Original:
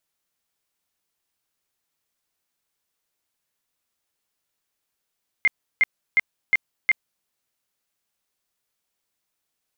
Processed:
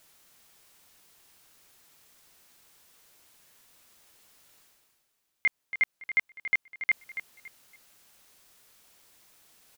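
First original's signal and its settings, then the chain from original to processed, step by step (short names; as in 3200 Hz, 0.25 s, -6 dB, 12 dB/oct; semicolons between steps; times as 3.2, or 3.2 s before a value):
tone bursts 2110 Hz, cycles 55, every 0.36 s, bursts 5, -13 dBFS
limiter -17.5 dBFS; reverse; upward compressor, threshold -44 dBFS; reverse; feedback echo 0.281 s, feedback 29%, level -11.5 dB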